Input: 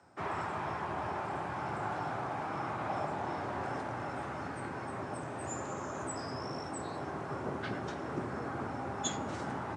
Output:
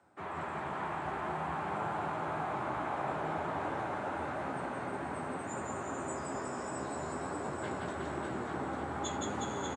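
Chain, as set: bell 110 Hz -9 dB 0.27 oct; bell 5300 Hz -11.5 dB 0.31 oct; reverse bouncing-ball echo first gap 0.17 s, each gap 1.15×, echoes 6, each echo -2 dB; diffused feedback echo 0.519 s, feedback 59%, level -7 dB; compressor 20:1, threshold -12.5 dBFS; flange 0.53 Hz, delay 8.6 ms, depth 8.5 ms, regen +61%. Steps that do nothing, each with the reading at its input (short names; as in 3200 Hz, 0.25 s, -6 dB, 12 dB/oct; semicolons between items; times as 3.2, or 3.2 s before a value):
compressor, threshold -12.5 dBFS: input peak -18.5 dBFS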